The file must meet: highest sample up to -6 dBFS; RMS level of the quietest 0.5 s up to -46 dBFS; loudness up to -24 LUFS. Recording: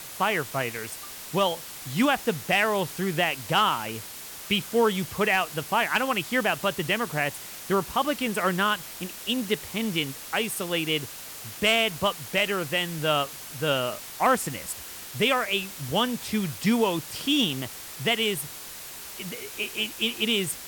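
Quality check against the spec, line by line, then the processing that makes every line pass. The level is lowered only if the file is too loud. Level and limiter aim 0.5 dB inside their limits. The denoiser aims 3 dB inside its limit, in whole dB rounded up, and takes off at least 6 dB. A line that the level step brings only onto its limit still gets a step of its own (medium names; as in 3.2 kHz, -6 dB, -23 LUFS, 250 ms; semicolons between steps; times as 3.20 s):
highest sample -11.0 dBFS: pass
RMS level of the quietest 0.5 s -40 dBFS: fail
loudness -26.0 LUFS: pass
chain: noise reduction 9 dB, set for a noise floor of -40 dBFS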